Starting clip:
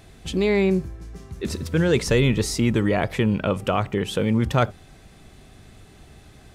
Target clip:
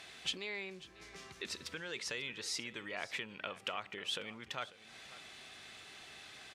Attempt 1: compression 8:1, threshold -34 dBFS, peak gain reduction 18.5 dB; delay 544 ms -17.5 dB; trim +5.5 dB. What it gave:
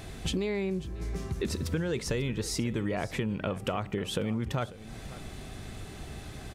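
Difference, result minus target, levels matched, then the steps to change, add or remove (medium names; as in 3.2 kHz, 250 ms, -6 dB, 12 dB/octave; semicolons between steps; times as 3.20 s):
4 kHz band -8.5 dB
add after compression: band-pass filter 3 kHz, Q 0.8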